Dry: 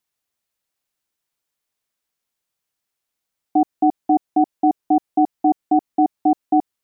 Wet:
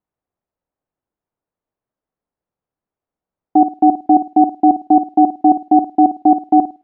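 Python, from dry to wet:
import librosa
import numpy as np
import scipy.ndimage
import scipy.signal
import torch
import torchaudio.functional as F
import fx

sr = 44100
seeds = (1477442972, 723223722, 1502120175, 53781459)

y = fx.room_flutter(x, sr, wall_m=9.2, rt60_s=0.28)
y = fx.env_lowpass(y, sr, base_hz=820.0, full_db=-12.0)
y = F.gain(torch.from_numpy(y), 5.5).numpy()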